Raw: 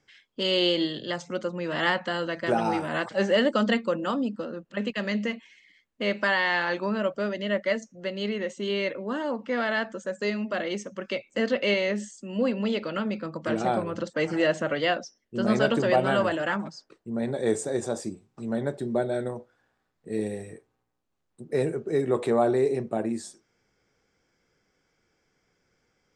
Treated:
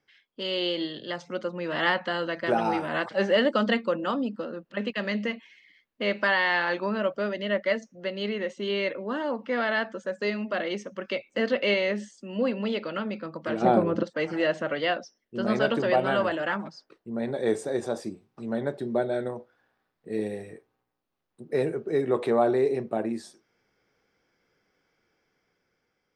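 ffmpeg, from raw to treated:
-filter_complex "[0:a]asettb=1/sr,asplit=3[a][b][c];[a]atrim=end=13.624[d];[b]atrim=start=13.62:end=14.03,asetpts=PTS-STARTPTS,afade=t=in:d=0.004:c=qsin,afade=t=out:st=0.406:d=0.004:c=qsin,equalizer=f=250:w=0.4:g=11[e];[c]atrim=start=14.026[f];[d][e]acrossfade=d=0.004:c1=hsin:c2=qsin[g];[g][f]acrossfade=d=0.004:c1=qsin:c2=hsin,equalizer=f=7.5k:t=o:w=0.6:g=-12,dynaudnorm=f=330:g=7:m=5.5dB,lowshelf=f=150:g=-8,volume=-4.5dB"

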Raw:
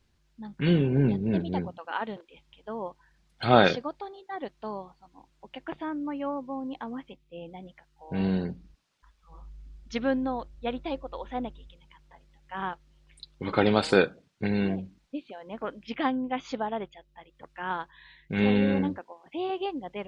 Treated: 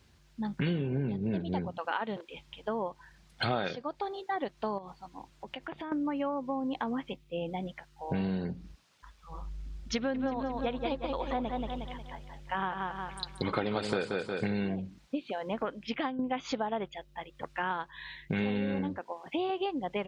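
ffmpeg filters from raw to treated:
-filter_complex "[0:a]asettb=1/sr,asplit=3[a][b][c];[a]atrim=end=4.784[d];[b]atrim=start=4.78:end=5.92,asetpts=PTS-STARTPTS,afade=t=in:d=0.004:c=qsin,afade=t=out:st=1.136:d=0.004:c=qsin,acompressor=threshold=-45dB:ratio=5:attack=3.2:release=140:knee=1:detection=peak[e];[c]atrim=start=5.916[f];[d][e]acrossfade=d=0.004:c1=hsin:c2=qsin[g];[g][f]acrossfade=d=0.004:c1=qsin:c2=hsin,asplit=3[h][i][j];[h]afade=t=out:st=10.14:d=0.02[k];[i]aecho=1:1:180|360|540|720|900:0.501|0.195|0.0762|0.0297|0.0116,afade=t=in:st=10.14:d=0.02,afade=t=out:st=14.53:d=0.02[l];[j]afade=t=in:st=14.53:d=0.02[m];[k][l][m]amix=inputs=3:normalize=0,asplit=2[n][o];[n]atrim=end=16.19,asetpts=PTS-STARTPTS,afade=t=out:st=15.59:d=0.6:silence=0.237137[p];[o]atrim=start=16.19,asetpts=PTS-STARTPTS,afade=t=in:d=0.004:c=hsin:silence=0.237137[q];[p][q]concat=n=2:v=0:a=1,highpass=52,equalizer=f=300:t=o:w=0.77:g=-2,acompressor=threshold=-38dB:ratio=6,volume=8.5dB"

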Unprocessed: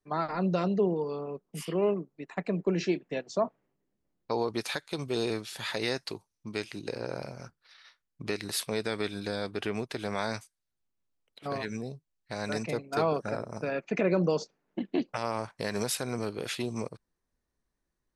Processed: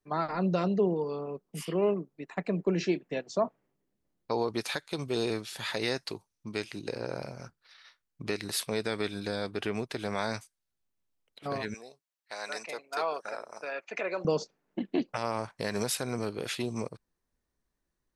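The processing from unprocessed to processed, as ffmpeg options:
-filter_complex "[0:a]asettb=1/sr,asplit=3[a][b][c];[a]atrim=end=11.744[d];[b]atrim=start=11.74:end=14.25,asetpts=PTS-STARTPTS,afade=t=in:d=0.004:c=qsin,afade=t=out:st=2.506:d=0.004:c=qsin,highpass=700[e];[c]atrim=start=14.246[f];[d][e]acrossfade=d=0.004:c1=hsin:c2=qsin[g];[g][f]acrossfade=d=0.004:c1=qsin:c2=hsin"

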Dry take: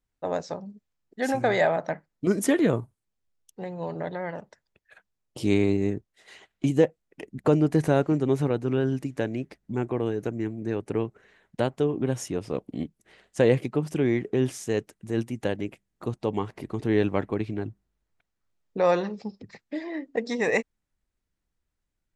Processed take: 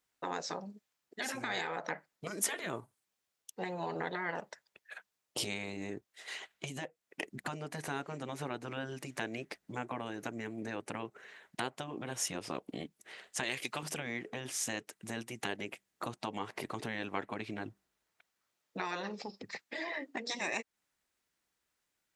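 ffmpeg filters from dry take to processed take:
-filter_complex "[0:a]asettb=1/sr,asplit=3[a][b][c];[a]atrim=end=13.434[d];[b]atrim=start=13.43:end=13.83,asetpts=PTS-STARTPTS,afade=t=in:d=0.004:c=qsin,afade=t=out:st=0.396:d=0.004:c=qsin,tiltshelf=f=1.2k:g=-8.5[e];[c]atrim=start=13.826[f];[d][e]acrossfade=d=0.004:c1=hsin:c2=qsin[g];[g][f]acrossfade=d=0.004:c1=qsin:c2=hsin,acompressor=threshold=-30dB:ratio=6,highpass=f=840:p=1,afftfilt=real='re*lt(hypot(re,im),0.0501)':imag='im*lt(hypot(re,im),0.0501)':win_size=1024:overlap=0.75,volume=7dB"

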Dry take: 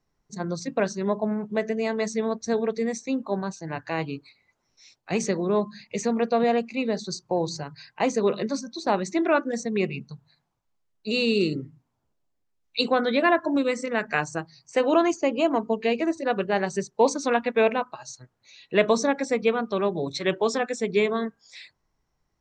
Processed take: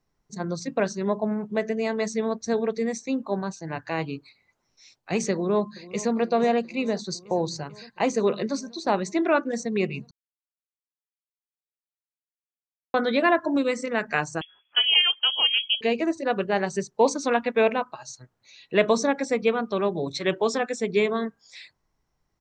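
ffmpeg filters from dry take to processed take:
-filter_complex "[0:a]asplit=2[a][b];[b]afade=t=in:st=5.32:d=0.01,afade=t=out:st=6.13:d=0.01,aecho=0:1:440|880|1320|1760|2200|2640|3080|3520|3960|4400:0.141254|0.10594|0.0794552|0.0595914|0.0446936|0.0335202|0.0251401|0.0188551|0.0141413|0.010606[c];[a][c]amix=inputs=2:normalize=0,asettb=1/sr,asplit=3[d][e][f];[d]atrim=end=14.414[g];[e]atrim=start=14.41:end=15.81,asetpts=PTS-STARTPTS,afade=t=in:d=0.004:c=qsin,afade=t=out:st=1.396:d=0.004:c=qsin,lowpass=f=3k:t=q:w=0.5098,lowpass=f=3k:t=q:w=0.6013,lowpass=f=3k:t=q:w=0.9,lowpass=f=3k:t=q:w=2.563,afreqshift=-3500[h];[f]atrim=start=15.806[i];[g][h]acrossfade=d=0.004:c1=hsin:c2=qsin[j];[j][i]acrossfade=d=0.004:c1=qsin:c2=hsin,asplit=3[k][l][m];[k]atrim=end=10.11,asetpts=PTS-STARTPTS,afade=t=out:st=10.106:d=0.004:c=hsin[n];[l]atrim=start=10.11:end=12.94,asetpts=PTS-STARTPTS,volume=0[o];[m]atrim=start=12.94,asetpts=PTS-STARTPTS,afade=t=in:d=0.004:c=hsin[p];[n][o][p]concat=n=3:v=0:a=1"

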